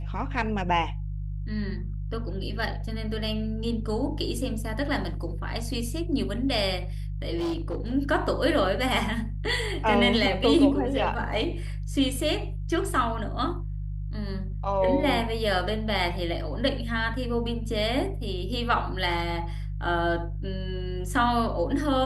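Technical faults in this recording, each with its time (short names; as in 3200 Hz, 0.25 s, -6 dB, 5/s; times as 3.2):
hum 50 Hz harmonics 3 -32 dBFS
7.37–7.95 clipped -25 dBFS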